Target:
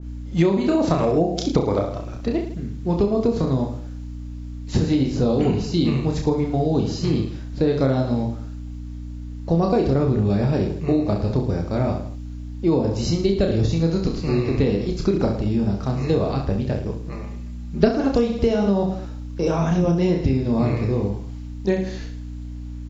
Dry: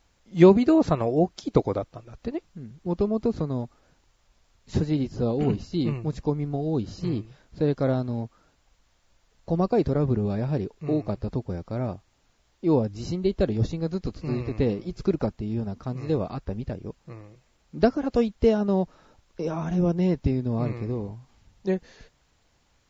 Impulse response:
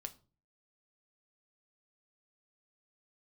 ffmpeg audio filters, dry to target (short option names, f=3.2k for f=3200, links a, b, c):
-filter_complex "[0:a]aeval=exprs='val(0)+0.01*(sin(2*PI*60*n/s)+sin(2*PI*2*60*n/s)/2+sin(2*PI*3*60*n/s)/3+sin(2*PI*4*60*n/s)/4+sin(2*PI*5*60*n/s)/5)':c=same,asplit=2[a][b];[b]aecho=0:1:30|66|109.2|161|223.2:0.631|0.398|0.251|0.158|0.1[c];[a][c]amix=inputs=2:normalize=0,acompressor=threshold=-21dB:ratio=12,asettb=1/sr,asplit=3[d][e][f];[d]atrim=end=17.124[g];[e]atrim=start=17.12:end=17.89,asetpts=PTS-STARTPTS,afade=t=in:d=0.004:c=qsin,afade=t=out:st=0.766:d=0.004:c=qsin,aecho=1:1:5:0.65,atrim=end_sample=33957[h];[f]atrim=start=17.886[i];[g][h]acrossfade=d=0.004:c1=hsin:c2=qsin[j];[j][i]acrossfade=d=0.004:c1=qsin:c2=hsin,adynamicequalizer=threshold=0.00398:dfrequency=2200:dqfactor=0.7:tfrequency=2200:tqfactor=0.7:attack=5:release=100:ratio=0.375:range=2:mode=boostabove:tftype=highshelf,volume=6.5dB"